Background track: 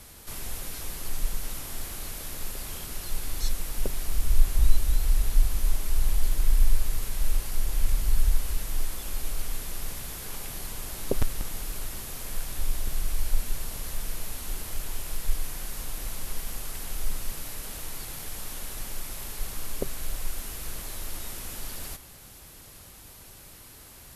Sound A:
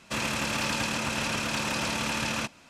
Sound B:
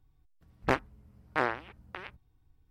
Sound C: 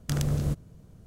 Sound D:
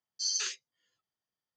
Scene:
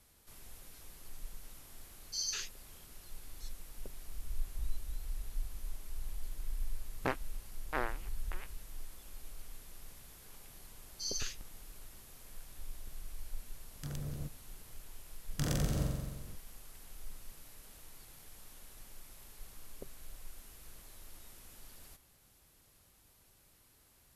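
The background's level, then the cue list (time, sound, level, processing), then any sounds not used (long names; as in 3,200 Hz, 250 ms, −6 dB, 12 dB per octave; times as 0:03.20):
background track −17.5 dB
0:01.93: mix in D −5.5 dB
0:06.37: mix in B −7.5 dB
0:10.80: mix in D −7.5 dB
0:13.74: mix in C −14.5 dB
0:15.30: mix in C −6 dB + flutter between parallel walls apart 7.6 metres, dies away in 1.3 s
not used: A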